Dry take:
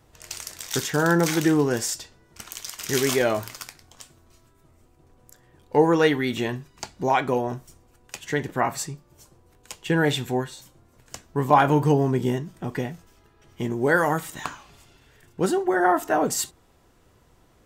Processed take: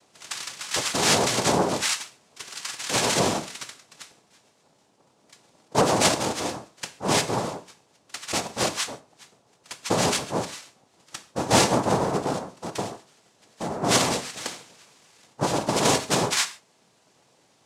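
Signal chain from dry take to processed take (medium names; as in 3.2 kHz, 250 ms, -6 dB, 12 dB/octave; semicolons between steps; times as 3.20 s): formant shift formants -3 st; tilt shelf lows -4 dB; noise-vocoded speech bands 2; gated-style reverb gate 170 ms falling, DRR 10.5 dB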